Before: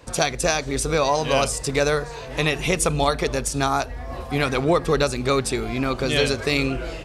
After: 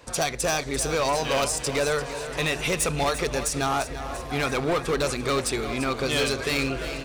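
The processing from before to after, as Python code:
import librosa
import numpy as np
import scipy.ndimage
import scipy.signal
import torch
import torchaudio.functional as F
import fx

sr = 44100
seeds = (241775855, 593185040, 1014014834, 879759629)

p1 = fx.low_shelf(x, sr, hz=390.0, db=-6.0)
p2 = np.clip(p1, -10.0 ** (-20.0 / 20.0), 10.0 ** (-20.0 / 20.0))
y = p2 + fx.echo_feedback(p2, sr, ms=343, feedback_pct=58, wet_db=-12, dry=0)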